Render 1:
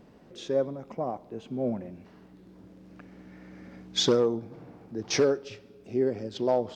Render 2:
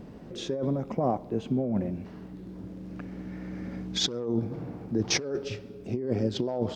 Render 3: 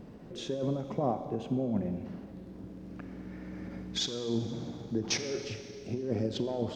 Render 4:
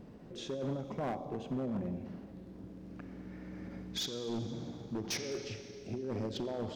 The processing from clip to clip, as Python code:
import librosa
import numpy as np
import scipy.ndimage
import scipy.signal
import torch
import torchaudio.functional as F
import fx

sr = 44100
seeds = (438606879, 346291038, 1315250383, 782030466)

y1 = fx.low_shelf(x, sr, hz=350.0, db=8.5)
y1 = fx.over_compress(y1, sr, threshold_db=-28.0, ratio=-1.0)
y2 = fx.rev_schroeder(y1, sr, rt60_s=2.3, comb_ms=30, drr_db=9.0)
y2 = fx.end_taper(y2, sr, db_per_s=160.0)
y2 = y2 * librosa.db_to_amplitude(-3.5)
y3 = np.clip(y2, -10.0 ** (-28.0 / 20.0), 10.0 ** (-28.0 / 20.0))
y3 = y3 * librosa.db_to_amplitude(-3.5)